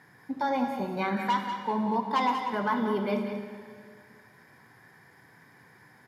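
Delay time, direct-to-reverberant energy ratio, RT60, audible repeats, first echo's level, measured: 0.189 s, 3.5 dB, 2.1 s, 1, -9.5 dB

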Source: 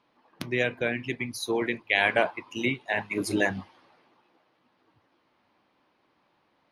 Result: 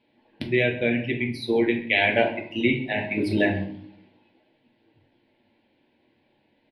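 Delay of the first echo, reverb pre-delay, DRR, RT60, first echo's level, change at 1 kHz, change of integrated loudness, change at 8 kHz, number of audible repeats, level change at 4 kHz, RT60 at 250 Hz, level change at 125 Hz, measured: 0.131 s, 3 ms, 1.5 dB, 0.60 s, -18.5 dB, +0.5 dB, +4.0 dB, under -10 dB, 1, +3.0 dB, 0.95 s, +7.5 dB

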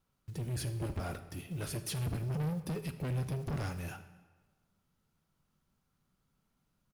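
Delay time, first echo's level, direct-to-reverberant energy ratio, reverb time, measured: 80 ms, -19.5 dB, 9.5 dB, 1.4 s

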